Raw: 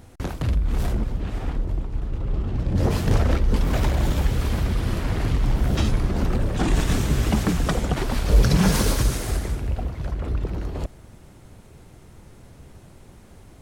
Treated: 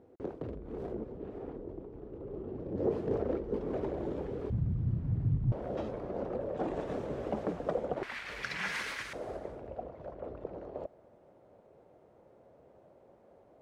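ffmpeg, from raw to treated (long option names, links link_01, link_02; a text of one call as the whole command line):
ffmpeg -i in.wav -af "asetnsamples=nb_out_samples=441:pad=0,asendcmd='4.5 bandpass f 130;5.52 bandpass f 540;8.03 bandpass f 2000;9.13 bandpass f 570',bandpass=frequency=420:width_type=q:width=2.9:csg=0" out.wav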